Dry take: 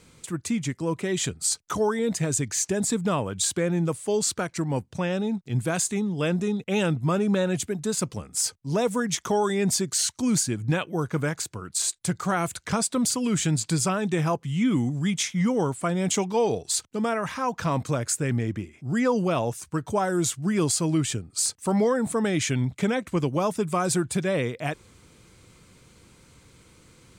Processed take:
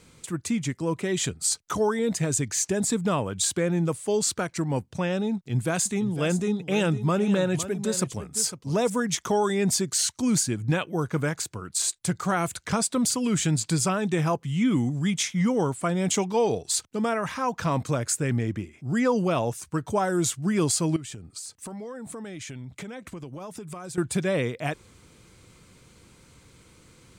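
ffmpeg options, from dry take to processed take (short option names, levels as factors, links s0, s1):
-filter_complex "[0:a]asettb=1/sr,asplit=3[s0][s1][s2];[s0]atrim=end=5.354[s3];[s1]atrim=start=5.35:end=8.9,asetpts=PTS-STARTPTS,afade=t=in:d=0.004:c=qsin,afade=t=out:st=3.546:d=0.004:c=qsin,aecho=1:1:505:0.251,atrim=end_sample=156555[s4];[s2]atrim=start=8.896[s5];[s3][s4]acrossfade=d=0.004:c1=hsin:c2=qsin[s6];[s6][s5]acrossfade=d=0.004:c1=qsin:c2=hsin,asettb=1/sr,asplit=3[s7][s8][s9];[s7]atrim=end=20.964[s10];[s8]atrim=start=20.96:end=23.98,asetpts=PTS-STARTPTS,afade=t=in:d=0.004:c=qsin,afade=t=out:st=3.016:d=0.004:c=qsin,acompressor=threshold=0.02:ratio=16:attack=3.2:release=140:knee=1:detection=peak[s11];[s9]atrim=start=23.976[s12];[s10][s11]acrossfade=d=0.004:c1=hsin:c2=qsin[s13];[s13][s12]acrossfade=d=0.004:c1=qsin:c2=hsin"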